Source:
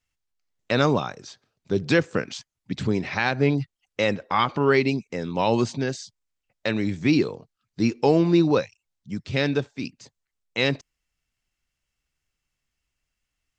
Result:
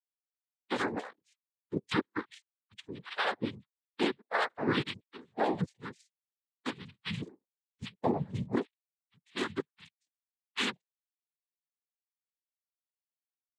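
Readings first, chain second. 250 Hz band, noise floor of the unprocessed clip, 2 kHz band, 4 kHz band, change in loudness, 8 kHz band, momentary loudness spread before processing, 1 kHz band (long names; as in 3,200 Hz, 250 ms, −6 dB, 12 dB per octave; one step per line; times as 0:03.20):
−12.5 dB, −83 dBFS, −9.0 dB, −7.5 dB, −11.0 dB, −10.5 dB, 15 LU, −9.0 dB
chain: spectral dynamics exaggerated over time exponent 2
downward compressor 6 to 1, threshold −24 dBFS, peak gain reduction 9 dB
single-sideband voice off tune −180 Hz 380–3,500 Hz
cochlear-implant simulation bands 6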